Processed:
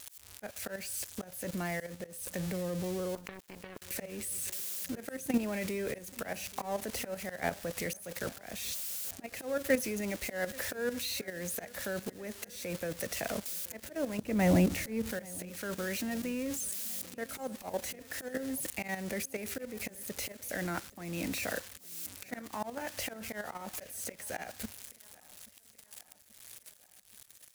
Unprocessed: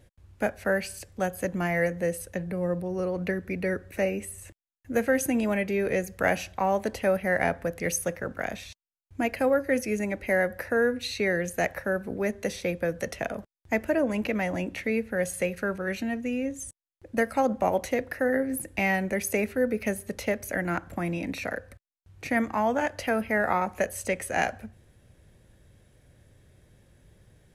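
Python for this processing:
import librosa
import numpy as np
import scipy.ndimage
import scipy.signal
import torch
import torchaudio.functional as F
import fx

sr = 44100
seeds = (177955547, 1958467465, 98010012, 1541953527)

y = x + 0.5 * 10.0 ** (-24.0 / 20.0) * np.diff(np.sign(x), prepend=np.sign(x[:1]))
y = fx.low_shelf(y, sr, hz=490.0, db=11.5, at=(14.2, 15.11))
y = fx.level_steps(y, sr, step_db=12)
y = fx.leveller(y, sr, passes=1)
y = fx.auto_swell(y, sr, attack_ms=306.0)
y = fx.high_shelf(y, sr, hz=12000.0, db=-6.0)
y = fx.echo_feedback(y, sr, ms=831, feedback_pct=59, wet_db=-23.0)
y = fx.power_curve(y, sr, exponent=3.0, at=(3.15, 3.82))
y = y * 10.0 ** (-2.5 / 20.0)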